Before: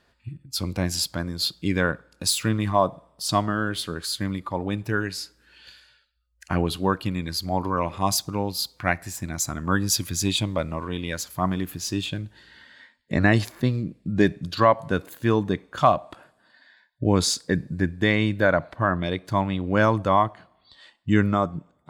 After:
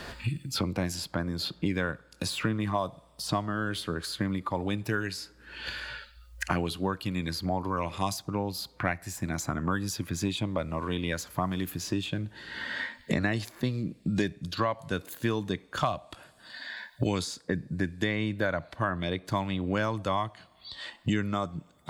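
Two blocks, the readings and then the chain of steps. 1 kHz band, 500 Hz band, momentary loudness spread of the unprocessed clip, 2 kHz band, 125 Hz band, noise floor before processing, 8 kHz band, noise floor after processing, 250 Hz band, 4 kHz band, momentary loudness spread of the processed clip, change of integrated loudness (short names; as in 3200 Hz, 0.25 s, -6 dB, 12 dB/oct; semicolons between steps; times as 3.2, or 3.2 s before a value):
-8.0 dB, -8.0 dB, 9 LU, -5.5 dB, -6.0 dB, -65 dBFS, -10.5 dB, -59 dBFS, -5.5 dB, -7.0 dB, 9 LU, -7.0 dB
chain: three-band squash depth 100%; gain -7 dB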